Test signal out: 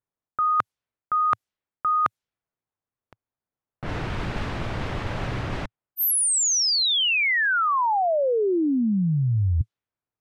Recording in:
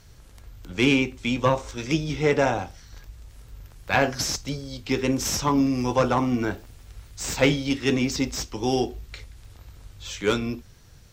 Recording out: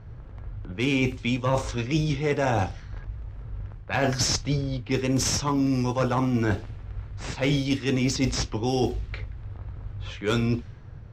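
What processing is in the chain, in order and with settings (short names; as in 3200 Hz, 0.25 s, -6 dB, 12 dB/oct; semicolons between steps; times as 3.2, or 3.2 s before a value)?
low-pass opened by the level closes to 1200 Hz, open at -19.5 dBFS; bell 110 Hz +7 dB 0.78 oct; reverse; compressor 12:1, threshold -26 dBFS; reverse; gain +6 dB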